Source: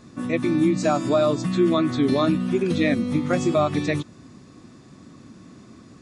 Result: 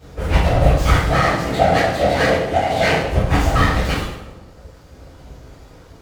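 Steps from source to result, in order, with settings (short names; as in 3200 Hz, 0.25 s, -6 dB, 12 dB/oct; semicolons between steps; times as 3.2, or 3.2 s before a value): reverb removal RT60 1.4 s; full-wave rectifier; whisperiser; 1.09–3.03 speaker cabinet 150–9400 Hz, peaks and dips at 670 Hz +7 dB, 1000 Hz -4 dB, 2000 Hz +6 dB; on a send: dark delay 0.197 s, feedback 47%, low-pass 810 Hz, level -13 dB; on the sum: two-slope reverb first 0.75 s, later 2.2 s, from -26 dB, DRR -10 dB; running maximum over 3 samples; gain -1.5 dB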